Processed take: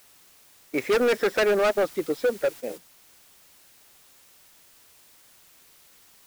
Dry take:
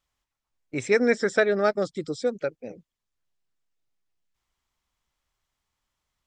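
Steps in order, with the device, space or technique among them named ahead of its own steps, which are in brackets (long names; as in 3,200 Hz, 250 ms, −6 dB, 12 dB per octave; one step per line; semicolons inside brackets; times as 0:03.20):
aircraft radio (band-pass filter 350–2,300 Hz; hard clipping −25.5 dBFS, distortion −6 dB; white noise bed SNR 18 dB; noise gate −44 dBFS, range −9 dB)
level +7.5 dB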